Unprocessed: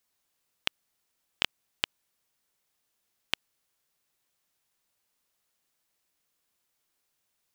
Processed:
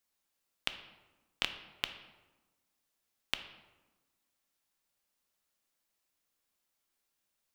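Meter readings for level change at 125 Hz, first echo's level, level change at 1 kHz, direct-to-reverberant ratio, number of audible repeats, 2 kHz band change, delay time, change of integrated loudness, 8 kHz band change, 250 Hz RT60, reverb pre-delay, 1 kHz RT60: -5.5 dB, none, -4.0 dB, 7.0 dB, none, -4.5 dB, none, -5.0 dB, -4.5 dB, 1.5 s, 3 ms, 1.1 s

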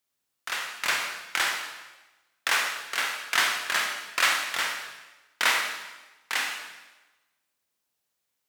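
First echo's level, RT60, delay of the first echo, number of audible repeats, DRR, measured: none, 1.1 s, none, none, 2.0 dB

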